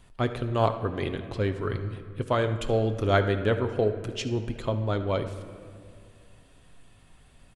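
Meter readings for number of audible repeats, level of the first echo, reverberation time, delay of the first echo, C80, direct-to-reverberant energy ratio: 1, -18.0 dB, 2.2 s, 73 ms, 11.5 dB, 7.0 dB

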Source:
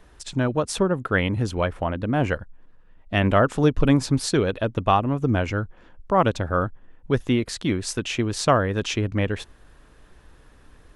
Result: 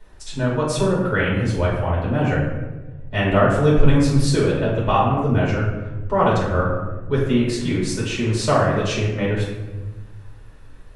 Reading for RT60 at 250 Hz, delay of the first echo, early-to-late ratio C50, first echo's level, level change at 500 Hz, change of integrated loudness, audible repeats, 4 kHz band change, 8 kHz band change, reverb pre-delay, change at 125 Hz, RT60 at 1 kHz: 1.7 s, none, 2.0 dB, none, +3.5 dB, +3.0 dB, none, +1.0 dB, +0.5 dB, 3 ms, +5.0 dB, 1.0 s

